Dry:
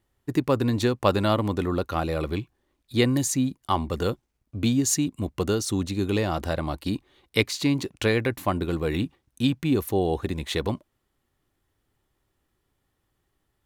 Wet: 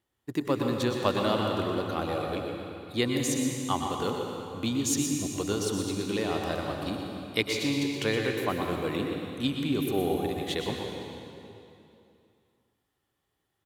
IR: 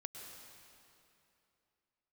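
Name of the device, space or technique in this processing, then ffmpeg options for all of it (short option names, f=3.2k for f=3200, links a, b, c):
PA in a hall: -filter_complex "[0:a]highpass=f=170:p=1,equalizer=f=3.3k:t=o:w=0.39:g=3.5,aecho=1:1:121:0.355[a];[1:a]atrim=start_sample=2205[b];[a][b]afir=irnorm=-1:irlink=0"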